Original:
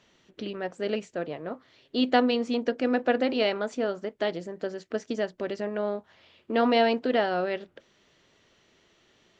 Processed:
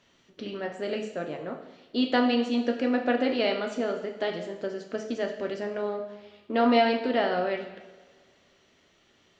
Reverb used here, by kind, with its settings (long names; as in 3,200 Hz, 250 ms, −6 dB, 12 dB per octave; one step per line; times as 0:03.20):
coupled-rooms reverb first 0.85 s, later 2.3 s, DRR 2.5 dB
level −2 dB